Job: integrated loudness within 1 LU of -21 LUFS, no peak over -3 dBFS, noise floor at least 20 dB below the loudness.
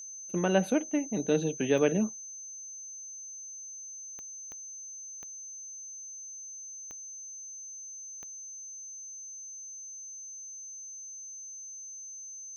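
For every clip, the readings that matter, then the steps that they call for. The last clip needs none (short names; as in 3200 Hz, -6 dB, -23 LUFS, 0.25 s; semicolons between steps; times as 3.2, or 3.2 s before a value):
clicks 6; steady tone 6200 Hz; tone level -41 dBFS; loudness -35.0 LUFS; peak -11.0 dBFS; loudness target -21.0 LUFS
-> de-click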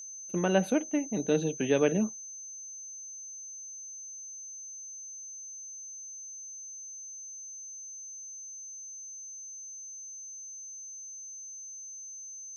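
clicks 0; steady tone 6200 Hz; tone level -41 dBFS
-> notch 6200 Hz, Q 30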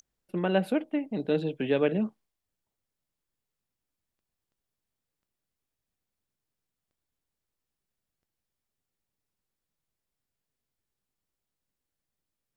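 steady tone none; loudness -29.0 LUFS; peak -11.5 dBFS; loudness target -21.0 LUFS
-> gain +8 dB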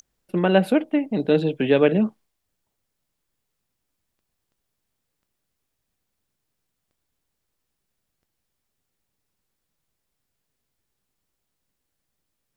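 loudness -21.0 LUFS; peak -3.5 dBFS; noise floor -79 dBFS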